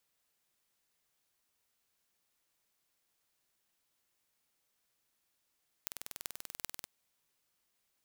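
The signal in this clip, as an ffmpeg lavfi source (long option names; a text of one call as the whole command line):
ffmpeg -f lavfi -i "aevalsrc='0.335*eq(mod(n,2141),0)*(0.5+0.5*eq(mod(n,17128),0))':duration=0.99:sample_rate=44100" out.wav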